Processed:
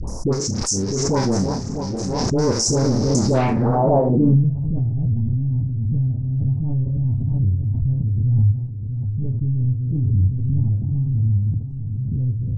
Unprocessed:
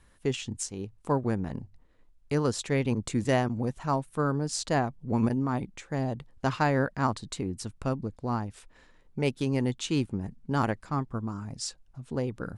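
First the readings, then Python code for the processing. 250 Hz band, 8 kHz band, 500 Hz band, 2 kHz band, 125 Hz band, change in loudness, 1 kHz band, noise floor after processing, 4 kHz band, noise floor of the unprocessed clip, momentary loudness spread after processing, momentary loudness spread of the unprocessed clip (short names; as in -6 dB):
+7.5 dB, +12.0 dB, +7.5 dB, n/a, +15.0 dB, +10.0 dB, +3.5 dB, -27 dBFS, +8.0 dB, -60 dBFS, 7 LU, 9 LU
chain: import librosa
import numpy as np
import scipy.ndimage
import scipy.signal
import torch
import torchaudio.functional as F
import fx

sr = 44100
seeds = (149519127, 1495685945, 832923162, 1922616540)

y = fx.reverse_delay_fb(x, sr, ms=325, feedback_pct=57, wet_db=-9)
y = scipy.signal.sosfilt(scipy.signal.cheby1(3, 1.0, [900.0, 6400.0], 'bandstop', fs=sr, output='sos'), y)
y = fx.peak_eq(y, sr, hz=6800.0, db=-14.0, octaves=2.0)
y = fx.leveller(y, sr, passes=3)
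y = fx.dispersion(y, sr, late='highs', ms=74.0, hz=850.0)
y = fx.filter_sweep_lowpass(y, sr, from_hz=5500.0, to_hz=100.0, start_s=3.22, end_s=4.54, q=3.2)
y = fx.high_shelf_res(y, sr, hz=4100.0, db=9.0, q=3.0)
y = fx.room_early_taps(y, sr, ms=(31, 66), db=(-6.5, -12.5))
y = fx.pre_swell(y, sr, db_per_s=21.0)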